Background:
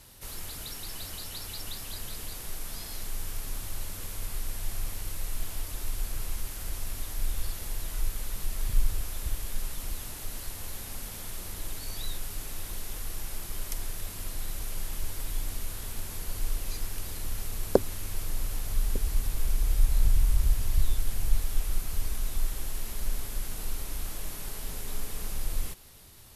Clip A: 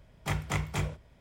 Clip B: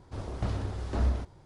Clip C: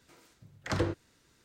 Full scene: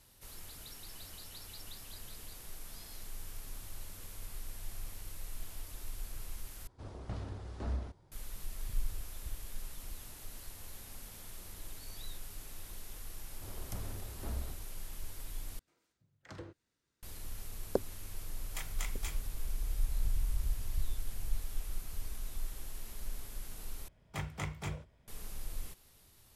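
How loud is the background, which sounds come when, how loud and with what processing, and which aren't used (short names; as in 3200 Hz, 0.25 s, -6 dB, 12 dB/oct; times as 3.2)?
background -10 dB
6.67 replace with B -9.5 dB
13.3 add B -13.5 dB + G.711 law mismatch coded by mu
15.59 replace with C -18 dB
18.29 add A -14.5 dB + tilt +4.5 dB/oct
23.88 replace with A -8 dB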